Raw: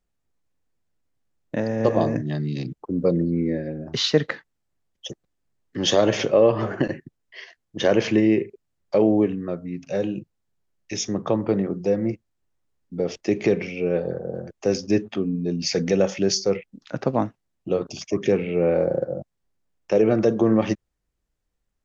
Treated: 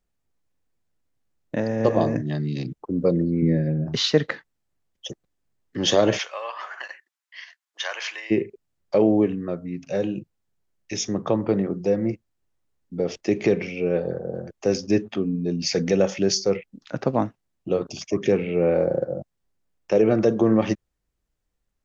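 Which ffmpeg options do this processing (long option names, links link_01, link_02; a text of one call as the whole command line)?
ffmpeg -i in.wav -filter_complex "[0:a]asettb=1/sr,asplit=3[link_01][link_02][link_03];[link_01]atrim=end=3.424[link_04];[link_02]atrim=start=3.42:end=3.95,asetpts=PTS-STARTPTS,afade=type=in:duration=0.004:curve=qsin,afade=type=out:start_time=0.526:duration=0.004:curve=qsin,equalizer=frequency=150:width_type=o:width=0.77:gain=12[link_05];[link_03]atrim=start=3.946[link_06];[link_04][link_05]acrossfade=duration=0.004:curve1=hsin:curve2=qsin[link_07];[link_07][link_06]acrossfade=duration=0.004:curve1=qsin:curve2=hsin,asplit=3[link_08][link_09][link_10];[link_08]afade=type=out:start_time=6.17:duration=0.02[link_11];[link_09]highpass=frequency=960:width=0.5412,highpass=frequency=960:width=1.3066,afade=type=in:start_time=6.17:duration=0.02,afade=type=out:start_time=8.3:duration=0.02[link_12];[link_10]afade=type=in:start_time=8.3:duration=0.02[link_13];[link_11][link_12][link_13]amix=inputs=3:normalize=0" out.wav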